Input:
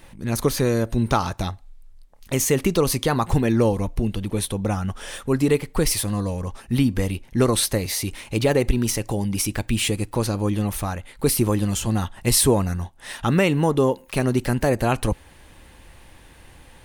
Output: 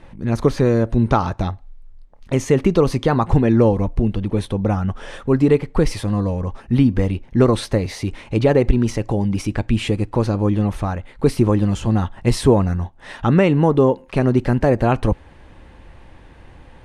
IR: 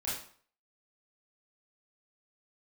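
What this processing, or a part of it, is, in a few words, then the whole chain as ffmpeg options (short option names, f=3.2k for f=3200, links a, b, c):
through cloth: -af "lowpass=7.1k,highshelf=f=2.5k:g=-13.5,volume=5dB"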